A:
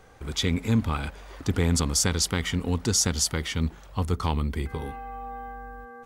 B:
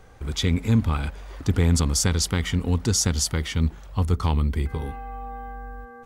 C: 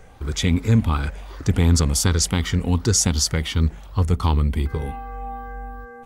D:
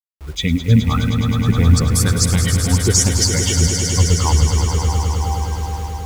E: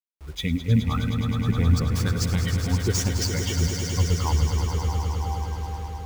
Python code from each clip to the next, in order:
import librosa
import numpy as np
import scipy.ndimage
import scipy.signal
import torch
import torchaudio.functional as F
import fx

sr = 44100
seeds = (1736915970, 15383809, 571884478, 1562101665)

y1 = fx.low_shelf(x, sr, hz=140.0, db=7.5)
y2 = fx.spec_ripple(y1, sr, per_octave=0.53, drift_hz=2.7, depth_db=6)
y2 = y2 * 10.0 ** (2.5 / 20.0)
y3 = fx.bin_expand(y2, sr, power=2.0)
y3 = fx.quant_dither(y3, sr, seeds[0], bits=8, dither='none')
y3 = fx.echo_swell(y3, sr, ms=105, loudest=5, wet_db=-9.0)
y3 = y3 * 10.0 ** (6.0 / 20.0)
y4 = scipy.signal.medfilt(y3, 5)
y4 = y4 * 10.0 ** (-7.5 / 20.0)